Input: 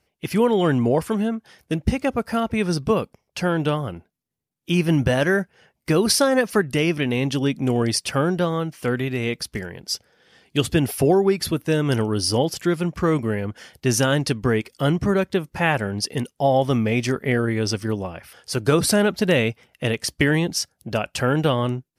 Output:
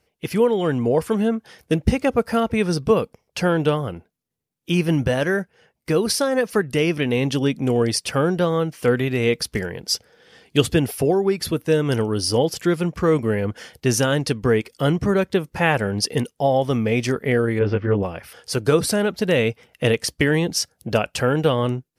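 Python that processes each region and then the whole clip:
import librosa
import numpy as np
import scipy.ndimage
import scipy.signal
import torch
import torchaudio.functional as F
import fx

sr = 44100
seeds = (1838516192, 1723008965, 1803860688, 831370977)

y = fx.chain(x, sr, fx.lowpass(hz=2500.0, slope=24),
    fx.doubler(ms=20.0, db=-2.0), at=(17.59, 18.03))
y = fx.peak_eq(y, sr, hz=470.0, db=6.0, octaves=0.21)
y = fx.rider(y, sr, range_db=4, speed_s=0.5)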